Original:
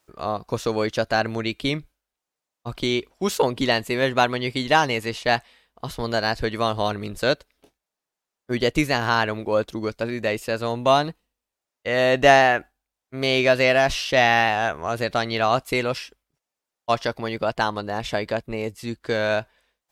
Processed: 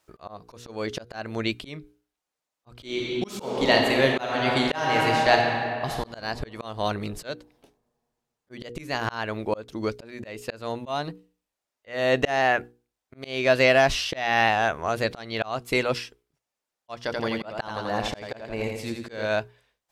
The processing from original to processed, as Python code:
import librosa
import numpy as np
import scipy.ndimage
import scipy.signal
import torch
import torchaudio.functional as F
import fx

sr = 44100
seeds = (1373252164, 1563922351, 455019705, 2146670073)

y = fx.reverb_throw(x, sr, start_s=2.77, length_s=3.25, rt60_s=2.5, drr_db=0.5)
y = fx.echo_feedback(y, sr, ms=84, feedback_pct=48, wet_db=-5, at=(17.04, 19.26))
y = fx.high_shelf(y, sr, hz=12000.0, db=-4.0)
y = fx.hum_notches(y, sr, base_hz=60, count=8)
y = fx.auto_swell(y, sr, attack_ms=324.0)